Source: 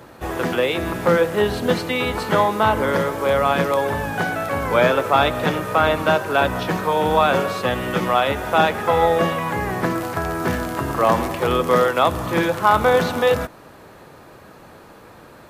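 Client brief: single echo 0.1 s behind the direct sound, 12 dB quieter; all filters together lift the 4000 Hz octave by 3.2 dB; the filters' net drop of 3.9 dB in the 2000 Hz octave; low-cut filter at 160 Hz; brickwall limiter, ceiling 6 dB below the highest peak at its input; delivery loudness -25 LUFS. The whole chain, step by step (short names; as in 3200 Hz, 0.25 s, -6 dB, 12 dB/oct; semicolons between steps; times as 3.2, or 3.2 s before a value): HPF 160 Hz; bell 2000 Hz -7 dB; bell 4000 Hz +6.5 dB; limiter -10 dBFS; echo 0.1 s -12 dB; gain -3.5 dB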